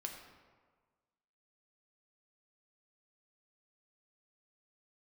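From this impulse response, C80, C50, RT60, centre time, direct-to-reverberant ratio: 6.5 dB, 5.5 dB, 1.5 s, 38 ms, 2.0 dB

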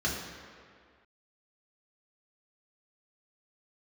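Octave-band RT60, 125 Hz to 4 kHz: 1.6 s, 1.9 s, 2.0 s, 2.1 s, 2.0 s, 1.5 s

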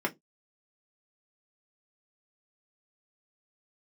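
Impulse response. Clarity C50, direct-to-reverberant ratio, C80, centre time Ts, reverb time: 25.0 dB, -1.0 dB, 34.5 dB, 8 ms, no single decay rate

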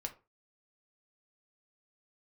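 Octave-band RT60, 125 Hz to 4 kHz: 0.35 s, 0.30 s, 0.30 s, 0.30 s, 0.25 s, 0.20 s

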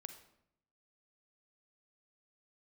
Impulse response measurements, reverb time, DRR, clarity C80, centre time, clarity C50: 0.75 s, 8.0 dB, 12.0 dB, 13 ms, 9.0 dB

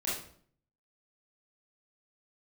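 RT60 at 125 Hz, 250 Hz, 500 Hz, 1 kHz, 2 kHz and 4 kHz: 0.80 s, 0.70 s, 0.60 s, 0.50 s, 0.45 s, 0.45 s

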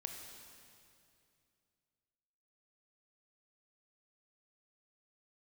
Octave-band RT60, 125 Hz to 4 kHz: 3.1 s, 2.9 s, 2.7 s, 2.4 s, 2.4 s, 2.3 s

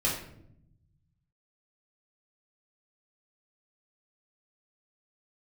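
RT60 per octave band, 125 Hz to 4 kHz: 2.1 s, 1.3 s, 0.85 s, 0.60 s, 0.55 s, 0.45 s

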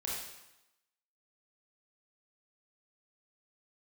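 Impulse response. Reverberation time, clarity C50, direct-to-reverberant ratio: 0.95 s, -0.5 dB, -5.0 dB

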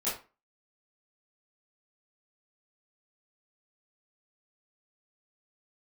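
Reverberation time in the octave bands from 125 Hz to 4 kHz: 0.30 s, 0.35 s, 0.30 s, 0.35 s, 0.30 s, 0.25 s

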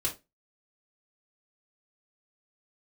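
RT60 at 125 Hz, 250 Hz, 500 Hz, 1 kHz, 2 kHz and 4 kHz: 0.25 s, 0.25 s, 0.25 s, 0.20 s, 0.20 s, 0.20 s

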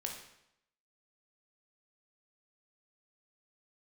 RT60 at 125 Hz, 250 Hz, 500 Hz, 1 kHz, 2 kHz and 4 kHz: 0.80 s, 0.80 s, 0.80 s, 0.80 s, 0.75 s, 0.70 s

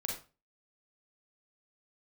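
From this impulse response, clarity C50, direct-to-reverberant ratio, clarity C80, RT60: 4.0 dB, -1.0 dB, 10.5 dB, 0.30 s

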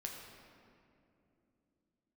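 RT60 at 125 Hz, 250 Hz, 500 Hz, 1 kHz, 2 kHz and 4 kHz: 3.7 s, no reading, 3.2 s, 2.4 s, 2.0 s, 1.5 s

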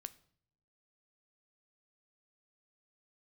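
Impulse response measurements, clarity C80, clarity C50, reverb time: 23.0 dB, 19.0 dB, no single decay rate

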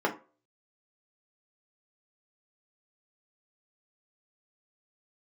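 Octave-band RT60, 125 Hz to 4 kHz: 0.30 s, 0.30 s, 0.40 s, 0.35 s, 0.30 s, 0.20 s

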